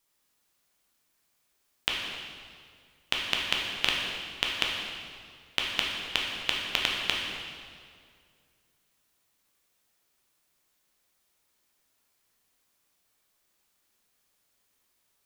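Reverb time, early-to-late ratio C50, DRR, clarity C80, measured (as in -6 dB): 2.2 s, 1.0 dB, -2.5 dB, 2.5 dB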